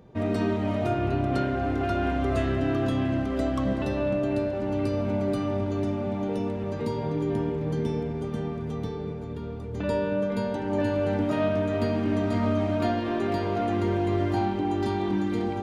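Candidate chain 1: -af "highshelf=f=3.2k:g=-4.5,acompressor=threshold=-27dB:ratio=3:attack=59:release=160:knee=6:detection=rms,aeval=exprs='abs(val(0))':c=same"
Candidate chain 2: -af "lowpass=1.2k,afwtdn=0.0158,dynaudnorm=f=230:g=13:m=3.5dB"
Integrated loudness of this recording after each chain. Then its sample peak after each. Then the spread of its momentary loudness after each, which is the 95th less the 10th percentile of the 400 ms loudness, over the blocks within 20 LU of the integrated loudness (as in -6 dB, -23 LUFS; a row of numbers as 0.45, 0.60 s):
-34.5, -24.5 LUFS; -17.0, -11.0 dBFS; 4, 6 LU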